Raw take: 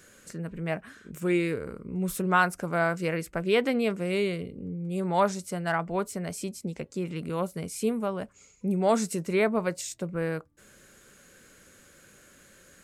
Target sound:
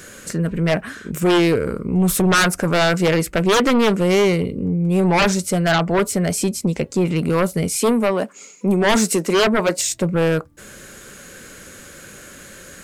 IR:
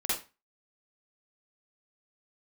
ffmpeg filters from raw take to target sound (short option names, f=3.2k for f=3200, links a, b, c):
-filter_complex "[0:a]asettb=1/sr,asplit=3[a][b][c];[a]atrim=end=7.764[d];[b]atrim=start=7.76:end=9.78,asetpts=PTS-STARTPTS,afade=t=in:d=0.004:c=qsin,afade=t=out:st=2.016:d=0.004:c=qsin,highpass=f=210:w=0.5412,highpass=f=210:w=1.3066[e];[c]atrim=start=9.776[f];[d][e]acrossfade=d=0.004:c1=hsin:c2=qsin[g];[g][f]acrossfade=d=0.004:c1=qsin:c2=hsin,aeval=exprs='0.316*sin(PI/2*4.47*val(0)/0.316)':c=same,volume=-1.5dB"